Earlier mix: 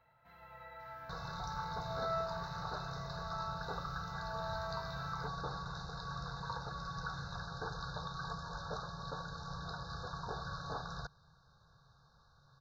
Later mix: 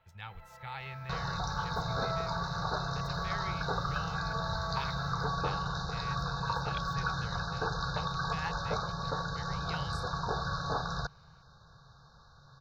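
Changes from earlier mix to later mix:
speech: unmuted; second sound +8.5 dB

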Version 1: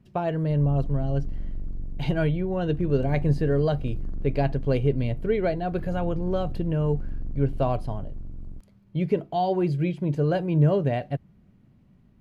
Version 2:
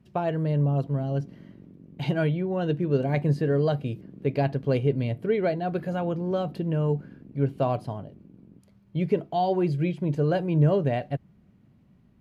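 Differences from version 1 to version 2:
background: add Chebyshev band-pass 170–490 Hz; master: add high-pass 75 Hz 6 dB/octave

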